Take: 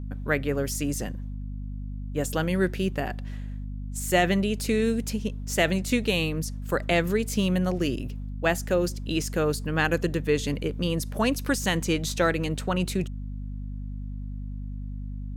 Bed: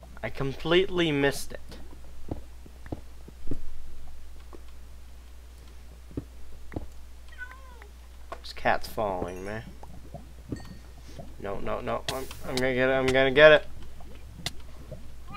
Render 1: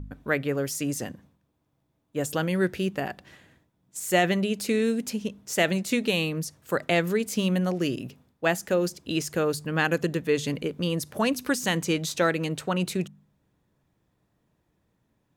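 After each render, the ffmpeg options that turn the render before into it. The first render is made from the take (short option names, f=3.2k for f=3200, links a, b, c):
-af "bandreject=f=50:t=h:w=4,bandreject=f=100:t=h:w=4,bandreject=f=150:t=h:w=4,bandreject=f=200:t=h:w=4,bandreject=f=250:t=h:w=4"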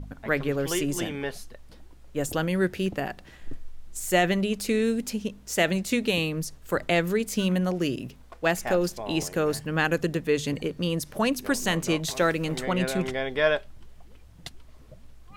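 -filter_complex "[1:a]volume=-7.5dB[a];[0:a][a]amix=inputs=2:normalize=0"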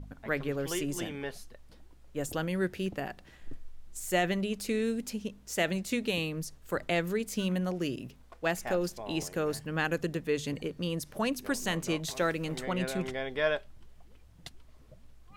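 -af "volume=-6dB"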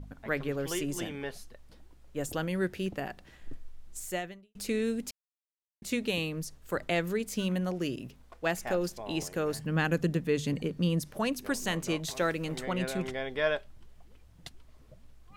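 -filter_complex "[0:a]asettb=1/sr,asplit=3[a][b][c];[a]atrim=end=9.594[d];[b]atrim=start=9.59:end=11.09,asetpts=PTS-STARTPTS,afade=t=in:d=0.004:c=qsin,afade=t=out:st=1.496:d=0.004:c=qsin,equalizer=f=180:t=o:w=1.2:g=7.5[e];[c]atrim=start=11.086[f];[d][e]acrossfade=d=0.004:c1=hsin:c2=qsin[g];[g][f]acrossfade=d=0.004:c1=qsin:c2=hsin,asplit=4[h][i][j][k];[h]atrim=end=4.55,asetpts=PTS-STARTPTS,afade=t=out:st=3.99:d=0.56:c=qua[l];[i]atrim=start=4.55:end=5.11,asetpts=PTS-STARTPTS,afade=t=in:d=0.004:c=hsin,afade=t=out:st=0.556:d=0.004:c=hsin[m];[j]atrim=start=5.11:end=5.82,asetpts=PTS-STARTPTS,volume=0[n];[k]atrim=start=5.82,asetpts=PTS-STARTPTS,afade=t=in:d=0.004:c=hsin[o];[l][m][n][o]concat=n=4:v=0:a=1"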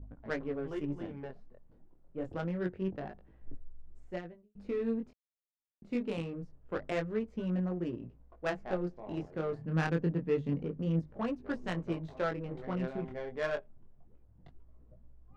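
-af "flanger=delay=17:depth=7.9:speed=0.26,adynamicsmooth=sensitivity=2:basefreq=820"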